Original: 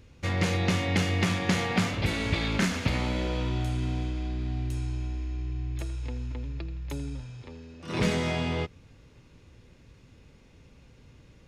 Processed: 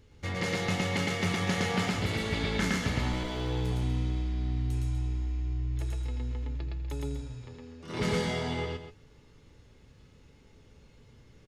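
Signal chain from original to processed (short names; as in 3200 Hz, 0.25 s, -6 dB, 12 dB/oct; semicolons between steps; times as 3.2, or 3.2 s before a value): 3.12–3.72 minimum comb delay 10 ms; notch 2500 Hz, Q 13; resonator 430 Hz, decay 0.17 s, harmonics all, mix 70%; loudspeakers at several distances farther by 39 m -1 dB, 84 m -11 dB; gain +4 dB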